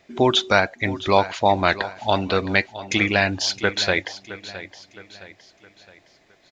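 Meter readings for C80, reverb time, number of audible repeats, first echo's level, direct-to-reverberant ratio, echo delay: none, none, 3, -15.0 dB, none, 0.665 s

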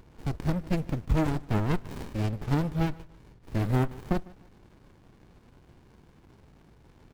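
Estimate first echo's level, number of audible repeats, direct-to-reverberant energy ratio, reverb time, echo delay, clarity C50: -22.5 dB, 2, none, none, 0.151 s, none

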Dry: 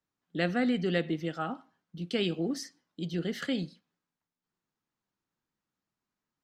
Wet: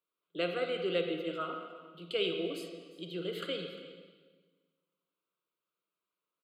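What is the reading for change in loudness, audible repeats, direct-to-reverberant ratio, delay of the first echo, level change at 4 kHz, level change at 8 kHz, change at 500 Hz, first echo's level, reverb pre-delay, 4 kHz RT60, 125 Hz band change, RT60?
-4.0 dB, 1, 4.5 dB, 0.352 s, +0.5 dB, -11.0 dB, +0.5 dB, -18.5 dB, 35 ms, 1.3 s, -11.5 dB, 1.5 s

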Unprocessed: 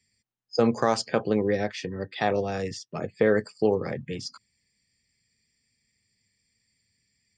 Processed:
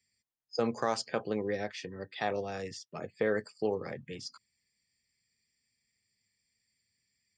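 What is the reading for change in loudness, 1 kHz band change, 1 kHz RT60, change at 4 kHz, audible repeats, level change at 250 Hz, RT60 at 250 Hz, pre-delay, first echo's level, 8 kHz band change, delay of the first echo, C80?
-8.0 dB, -7.0 dB, none, -6.0 dB, none, -10.0 dB, none, none, none, -6.0 dB, none, none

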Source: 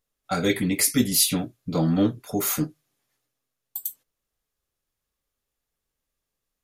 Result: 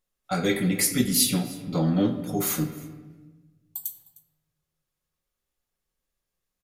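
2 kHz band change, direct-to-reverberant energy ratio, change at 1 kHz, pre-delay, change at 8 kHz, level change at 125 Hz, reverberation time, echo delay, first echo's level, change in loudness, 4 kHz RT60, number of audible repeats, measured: -1.0 dB, 5.0 dB, -1.5 dB, 6 ms, -1.5 dB, +0.5 dB, 1.3 s, 0.307 s, -21.5 dB, -1.5 dB, 0.90 s, 1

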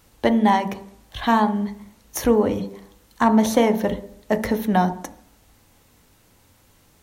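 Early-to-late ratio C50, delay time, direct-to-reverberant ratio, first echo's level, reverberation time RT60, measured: 15.0 dB, none, 10.0 dB, none, 0.70 s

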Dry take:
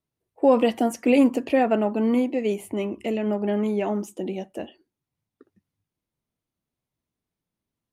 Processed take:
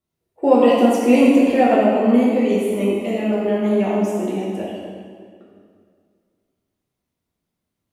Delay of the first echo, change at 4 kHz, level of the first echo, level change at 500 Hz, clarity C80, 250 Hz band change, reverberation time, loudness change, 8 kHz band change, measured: none, +6.0 dB, none, +6.5 dB, 0.5 dB, +6.5 dB, 2.0 s, +6.5 dB, +5.5 dB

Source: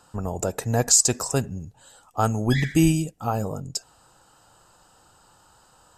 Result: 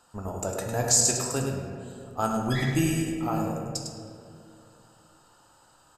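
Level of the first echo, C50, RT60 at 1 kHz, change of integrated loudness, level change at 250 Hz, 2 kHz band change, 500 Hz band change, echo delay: -7.5 dB, 2.0 dB, 2.0 s, -3.5 dB, -4.0 dB, -2.5 dB, -2.5 dB, 0.103 s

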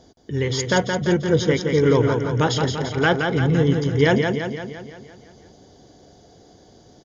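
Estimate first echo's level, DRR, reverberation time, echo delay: -5.0 dB, none, none, 0.171 s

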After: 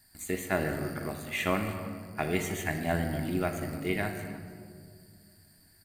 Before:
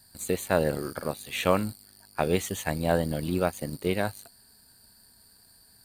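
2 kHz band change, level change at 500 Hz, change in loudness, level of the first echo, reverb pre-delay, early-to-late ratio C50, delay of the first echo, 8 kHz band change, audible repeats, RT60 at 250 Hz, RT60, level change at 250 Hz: +1.0 dB, -6.0 dB, -3.5 dB, -18.0 dB, 3 ms, 6.5 dB, 0.309 s, -4.5 dB, 1, 3.0 s, 2.0 s, -2.0 dB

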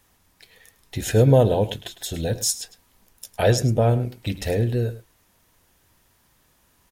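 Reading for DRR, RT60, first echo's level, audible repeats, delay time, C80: none, none, -15.5 dB, 1, 0.105 s, none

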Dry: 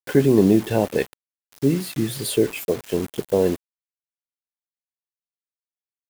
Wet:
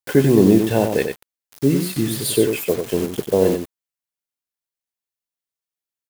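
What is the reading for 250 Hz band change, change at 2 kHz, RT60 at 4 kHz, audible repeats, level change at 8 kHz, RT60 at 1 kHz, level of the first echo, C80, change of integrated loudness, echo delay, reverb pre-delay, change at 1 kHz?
+3.0 dB, +3.0 dB, none, 1, +5.0 dB, none, -6.5 dB, none, +2.5 dB, 94 ms, none, +3.0 dB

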